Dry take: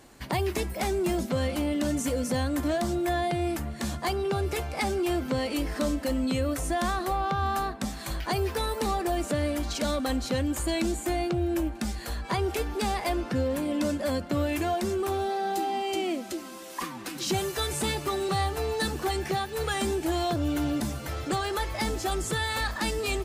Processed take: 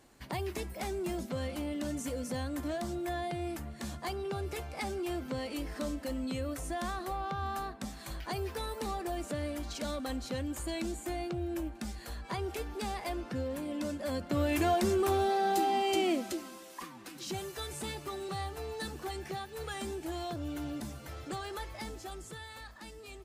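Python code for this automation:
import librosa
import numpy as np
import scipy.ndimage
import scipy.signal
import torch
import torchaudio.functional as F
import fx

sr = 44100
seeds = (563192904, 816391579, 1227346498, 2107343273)

y = fx.gain(x, sr, db=fx.line((13.97, -8.5), (14.64, 0.0), (16.19, 0.0), (16.83, -10.5), (21.58, -10.5), (22.72, -19.5)))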